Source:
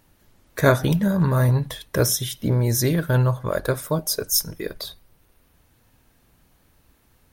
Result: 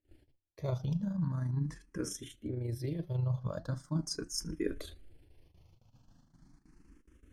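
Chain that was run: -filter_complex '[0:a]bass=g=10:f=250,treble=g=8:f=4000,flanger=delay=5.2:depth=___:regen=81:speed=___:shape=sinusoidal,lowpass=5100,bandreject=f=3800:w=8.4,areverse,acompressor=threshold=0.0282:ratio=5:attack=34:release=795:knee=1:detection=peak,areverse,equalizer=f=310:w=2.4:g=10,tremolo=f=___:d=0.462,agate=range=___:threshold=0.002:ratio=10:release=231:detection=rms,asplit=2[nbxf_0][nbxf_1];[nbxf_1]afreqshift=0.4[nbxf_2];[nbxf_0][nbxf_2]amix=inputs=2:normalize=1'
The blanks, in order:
2.1, 1.6, 26, 0.0562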